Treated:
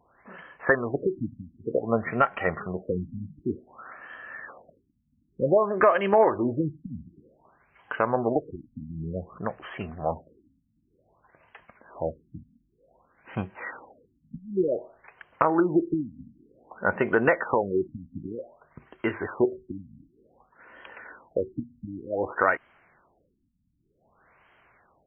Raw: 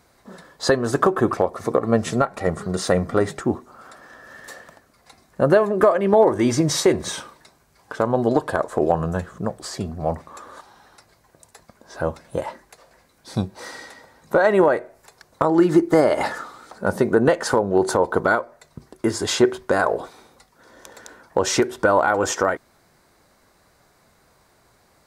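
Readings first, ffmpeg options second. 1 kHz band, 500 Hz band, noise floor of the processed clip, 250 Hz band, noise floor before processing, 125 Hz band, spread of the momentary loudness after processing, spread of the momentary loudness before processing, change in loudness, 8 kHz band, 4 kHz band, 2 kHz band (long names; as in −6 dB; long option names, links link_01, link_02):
−5.5 dB, −7.5 dB, −71 dBFS, −7.5 dB, −59 dBFS, −8.0 dB, 19 LU, 14 LU, −6.5 dB, below −40 dB, below −20 dB, −4.0 dB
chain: -af "tiltshelf=frequency=1100:gain=-8.5,afftfilt=real='re*lt(b*sr/1024,270*pow(3300/270,0.5+0.5*sin(2*PI*0.54*pts/sr)))':imag='im*lt(b*sr/1024,270*pow(3300/270,0.5+0.5*sin(2*PI*0.54*pts/sr)))':win_size=1024:overlap=0.75"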